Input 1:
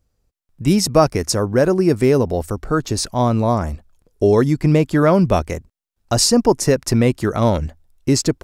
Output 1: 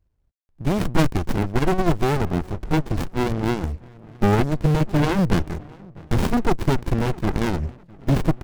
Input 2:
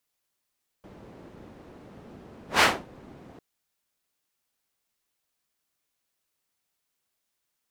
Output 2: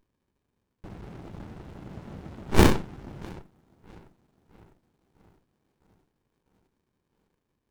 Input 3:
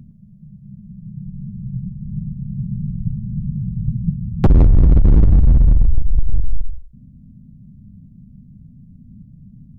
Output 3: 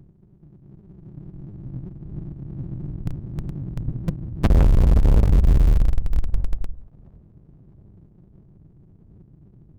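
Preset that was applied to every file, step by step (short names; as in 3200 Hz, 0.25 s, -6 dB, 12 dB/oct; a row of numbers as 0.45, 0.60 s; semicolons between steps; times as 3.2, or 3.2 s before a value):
self-modulated delay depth 0.52 ms; bell 260 Hz -6.5 dB 0.63 oct; tape echo 0.655 s, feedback 68%, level -19 dB, low-pass 1100 Hz; in parallel at -7.5 dB: Schmitt trigger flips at -14.5 dBFS; on the sum: dynamic EQ 350 Hz, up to +6 dB, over -32 dBFS, Q 2.8; running maximum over 65 samples; match loudness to -23 LUFS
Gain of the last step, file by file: -1.0, +9.5, -5.5 dB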